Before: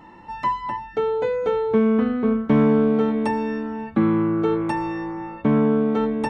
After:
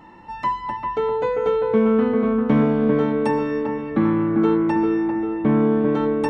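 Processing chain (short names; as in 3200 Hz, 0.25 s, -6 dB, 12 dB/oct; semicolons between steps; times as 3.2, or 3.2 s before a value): 4.67–5.6 air absorption 100 m; dark delay 0.396 s, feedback 48%, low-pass 2100 Hz, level -4.5 dB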